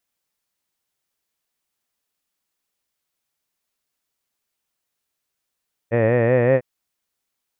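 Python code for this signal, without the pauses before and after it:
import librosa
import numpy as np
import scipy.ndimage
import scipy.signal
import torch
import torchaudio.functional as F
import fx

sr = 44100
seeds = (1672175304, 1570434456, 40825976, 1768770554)

y = fx.vowel(sr, seeds[0], length_s=0.7, word='head', hz=112.0, glide_st=2.5, vibrato_hz=5.3, vibrato_st=0.9)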